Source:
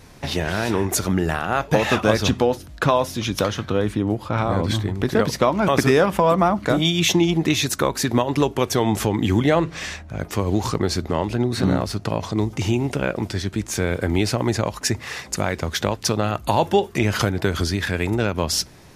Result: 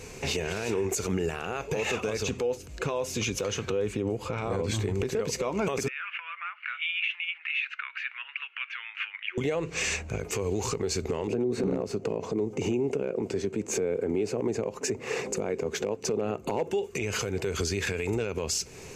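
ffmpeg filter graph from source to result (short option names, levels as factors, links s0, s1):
-filter_complex "[0:a]asettb=1/sr,asplit=3[s0][s1][s2];[s0]atrim=end=5.884[s3];[s1]atrim=start=5.88:end=9.38,asetpts=PTS-STARTPTS,afade=t=in:d=0.004:c=qsin,afade=t=out:st=3.496:d=0.004:c=qsin,acompressor=threshold=0.0631:ratio=2:attack=3.2:release=140:knee=1:detection=peak,asuperpass=centerf=2000:order=8:qfactor=1.2[s4];[s2]atrim=start=9.376[s5];[s3][s4]acrossfade=d=0.004:c1=hsin:c2=qsin[s6];[s6][s5]acrossfade=d=0.004:c1=qsin:c2=hsin,asettb=1/sr,asplit=3[s7][s8][s9];[s7]atrim=end=11.274[s10];[s8]atrim=start=11.27:end=16.71,asetpts=PTS-STARTPTS,afade=t=in:d=0.004:c=qsin,afade=t=out:st=5.436:d=0.004:c=qsin,highpass=210,tiltshelf=f=1100:g=9.5,asoftclip=type=hard:threshold=0.501[s11];[s9]atrim=start=16.706[s12];[s10][s11]acrossfade=d=0.004:c1=hsin:c2=qsin[s13];[s13][s12]acrossfade=d=0.004:c1=qsin:c2=hsin,superequalizer=7b=3.16:12b=2.51:14b=1.41:15b=3.16,acompressor=threshold=0.0708:ratio=4,alimiter=limit=0.106:level=0:latency=1:release=43"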